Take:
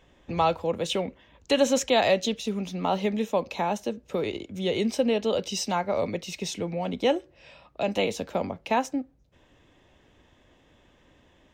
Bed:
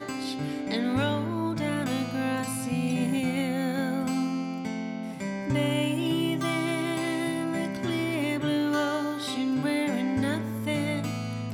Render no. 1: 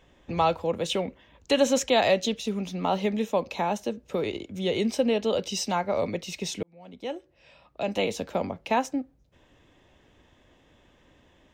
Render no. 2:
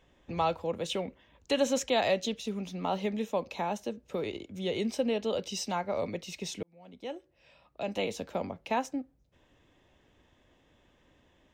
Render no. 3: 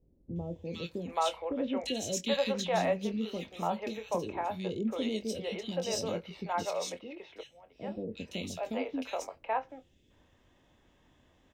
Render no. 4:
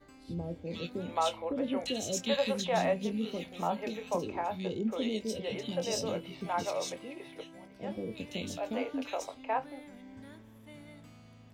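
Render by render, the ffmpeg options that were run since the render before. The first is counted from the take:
ffmpeg -i in.wav -filter_complex "[0:a]asplit=2[link_01][link_02];[link_01]atrim=end=6.63,asetpts=PTS-STARTPTS,afade=type=out:start_time=6.626:duration=0.004:curve=hsin[link_03];[link_02]atrim=start=6.63,asetpts=PTS-STARTPTS,afade=type=in:duration=1.54[link_04];[link_03][link_04]concat=n=2:v=0:a=1" out.wav
ffmpeg -i in.wav -af "volume=-5.5dB" out.wav
ffmpeg -i in.wav -filter_complex "[0:a]asplit=2[link_01][link_02];[link_02]adelay=23,volume=-10dB[link_03];[link_01][link_03]amix=inputs=2:normalize=0,acrossover=split=440|2400[link_04][link_05][link_06];[link_06]adelay=360[link_07];[link_05]adelay=780[link_08];[link_04][link_08][link_07]amix=inputs=3:normalize=0" out.wav
ffmpeg -i in.wav -i bed.wav -filter_complex "[1:a]volume=-23dB[link_01];[0:a][link_01]amix=inputs=2:normalize=0" out.wav

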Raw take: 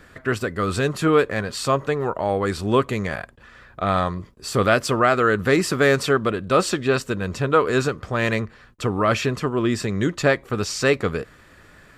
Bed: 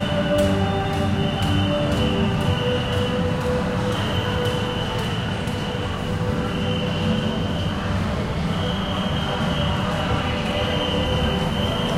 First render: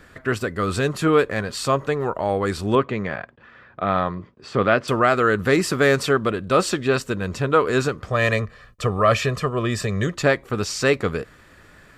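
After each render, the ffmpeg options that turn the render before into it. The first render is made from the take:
ffmpeg -i in.wav -filter_complex "[0:a]asettb=1/sr,asplit=3[link_01][link_02][link_03];[link_01]atrim=end=2.754[link_04];[link_02]atrim=start=2.75:end=4.88,asetpts=PTS-STARTPTS,afade=type=in:duration=0.004:curve=qsin,afade=type=out:start_time=2.126:duration=0.004:curve=qsin,highpass=110,lowpass=3000[link_05];[link_03]atrim=start=4.876[link_06];[link_04][link_05]acrossfade=duration=0.004:curve1=hsin:curve2=qsin[link_07];[link_07][link_06]acrossfade=duration=0.004:curve1=qsin:curve2=hsin,asettb=1/sr,asplit=3[link_08][link_09][link_10];[link_08]atrim=end=8.104[link_11];[link_09]atrim=start=8.1:end=10.14,asetpts=PTS-STARTPTS,afade=type=in:duration=0.004:curve=qsin,afade=type=out:start_time=2.036:duration=0.004:curve=qsin,aecho=1:1:1.7:0.62,atrim=end_sample=89964[link_12];[link_10]atrim=start=10.136[link_13];[link_11][link_12]acrossfade=duration=0.004:curve1=hsin:curve2=qsin[link_14];[link_14][link_13]acrossfade=duration=0.004:curve1=qsin:curve2=hsin" out.wav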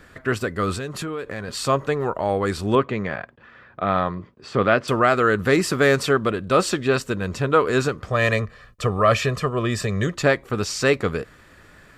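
ffmpeg -i in.wav -filter_complex "[0:a]asettb=1/sr,asplit=3[link_01][link_02][link_03];[link_01]atrim=end=0.734[link_04];[link_02]atrim=start=0.73:end=1.48,asetpts=PTS-STARTPTS,afade=type=in:duration=0.004:curve=qsin,afade=type=out:start_time=0.746:duration=0.004:curve=qsin,acompressor=threshold=-26dB:ratio=6:attack=3.2:release=140:knee=1:detection=peak[link_05];[link_03]atrim=start=1.476[link_06];[link_04][link_05]acrossfade=duration=0.004:curve1=hsin:curve2=qsin[link_07];[link_07][link_06]acrossfade=duration=0.004:curve1=qsin:curve2=hsin" out.wav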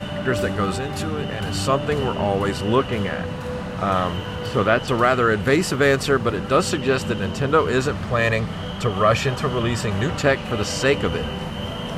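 ffmpeg -i in.wav -i bed.wav -filter_complex "[1:a]volume=-6.5dB[link_01];[0:a][link_01]amix=inputs=2:normalize=0" out.wav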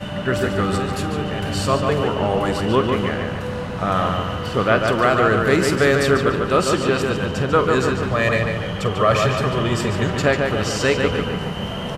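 ffmpeg -i in.wav -filter_complex "[0:a]asplit=2[link_01][link_02];[link_02]adelay=47,volume=-14dB[link_03];[link_01][link_03]amix=inputs=2:normalize=0,asplit=2[link_04][link_05];[link_05]adelay=145,lowpass=frequency=4100:poles=1,volume=-4dB,asplit=2[link_06][link_07];[link_07]adelay=145,lowpass=frequency=4100:poles=1,volume=0.53,asplit=2[link_08][link_09];[link_09]adelay=145,lowpass=frequency=4100:poles=1,volume=0.53,asplit=2[link_10][link_11];[link_11]adelay=145,lowpass=frequency=4100:poles=1,volume=0.53,asplit=2[link_12][link_13];[link_13]adelay=145,lowpass=frequency=4100:poles=1,volume=0.53,asplit=2[link_14][link_15];[link_15]adelay=145,lowpass=frequency=4100:poles=1,volume=0.53,asplit=2[link_16][link_17];[link_17]adelay=145,lowpass=frequency=4100:poles=1,volume=0.53[link_18];[link_04][link_06][link_08][link_10][link_12][link_14][link_16][link_18]amix=inputs=8:normalize=0" out.wav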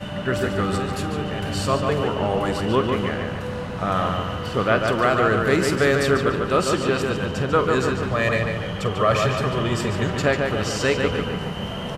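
ffmpeg -i in.wav -af "volume=-2.5dB" out.wav

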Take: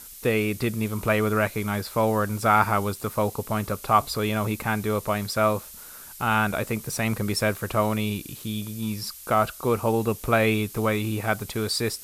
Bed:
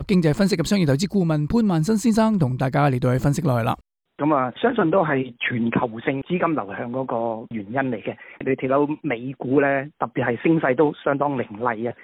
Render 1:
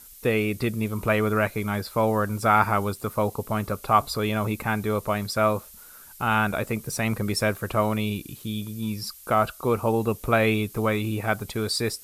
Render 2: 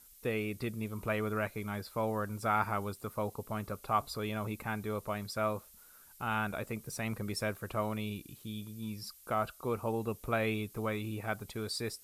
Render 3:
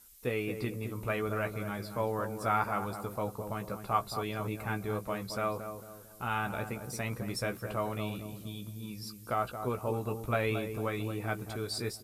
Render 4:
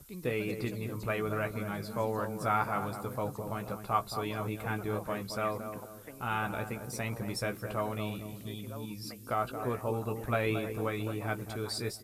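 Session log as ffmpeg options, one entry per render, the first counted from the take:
ffmpeg -i in.wav -af "afftdn=noise_reduction=6:noise_floor=-43" out.wav
ffmpeg -i in.wav -af "volume=-11dB" out.wav
ffmpeg -i in.wav -filter_complex "[0:a]asplit=2[link_01][link_02];[link_02]adelay=16,volume=-7dB[link_03];[link_01][link_03]amix=inputs=2:normalize=0,asplit=2[link_04][link_05];[link_05]adelay=224,lowpass=frequency=1000:poles=1,volume=-7dB,asplit=2[link_06][link_07];[link_07]adelay=224,lowpass=frequency=1000:poles=1,volume=0.45,asplit=2[link_08][link_09];[link_09]adelay=224,lowpass=frequency=1000:poles=1,volume=0.45,asplit=2[link_10][link_11];[link_11]adelay=224,lowpass=frequency=1000:poles=1,volume=0.45,asplit=2[link_12][link_13];[link_13]adelay=224,lowpass=frequency=1000:poles=1,volume=0.45[link_14];[link_04][link_06][link_08][link_10][link_12][link_14]amix=inputs=6:normalize=0" out.wav
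ffmpeg -i in.wav -i bed.wav -filter_complex "[1:a]volume=-26.5dB[link_01];[0:a][link_01]amix=inputs=2:normalize=0" out.wav

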